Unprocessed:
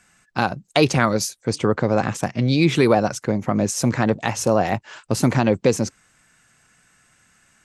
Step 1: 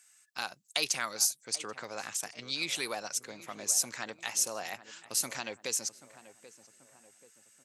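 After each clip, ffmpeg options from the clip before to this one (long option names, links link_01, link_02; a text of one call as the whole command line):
ffmpeg -i in.wav -filter_complex "[0:a]aderivative,asplit=2[link_01][link_02];[link_02]adelay=784,lowpass=frequency=1400:poles=1,volume=-14dB,asplit=2[link_03][link_04];[link_04]adelay=784,lowpass=frequency=1400:poles=1,volume=0.5,asplit=2[link_05][link_06];[link_06]adelay=784,lowpass=frequency=1400:poles=1,volume=0.5,asplit=2[link_07][link_08];[link_08]adelay=784,lowpass=frequency=1400:poles=1,volume=0.5,asplit=2[link_09][link_10];[link_10]adelay=784,lowpass=frequency=1400:poles=1,volume=0.5[link_11];[link_01][link_03][link_05][link_07][link_09][link_11]amix=inputs=6:normalize=0" out.wav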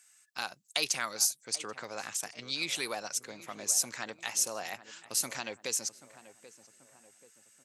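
ffmpeg -i in.wav -af anull out.wav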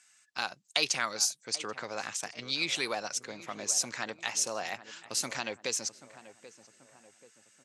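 ffmpeg -i in.wav -af "lowpass=6500,volume=3dB" out.wav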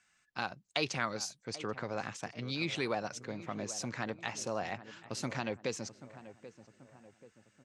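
ffmpeg -i in.wav -af "aemphasis=mode=reproduction:type=riaa,volume=-1.5dB" out.wav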